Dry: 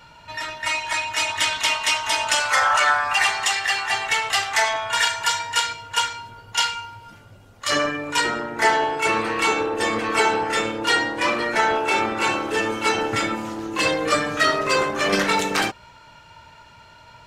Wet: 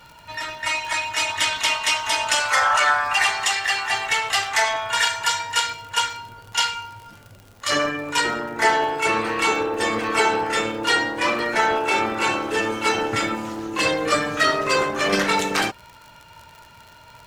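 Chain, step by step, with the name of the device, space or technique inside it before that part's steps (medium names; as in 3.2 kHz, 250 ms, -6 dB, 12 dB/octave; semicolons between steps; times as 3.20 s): vinyl LP (crackle 54 per s -33 dBFS; white noise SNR 44 dB)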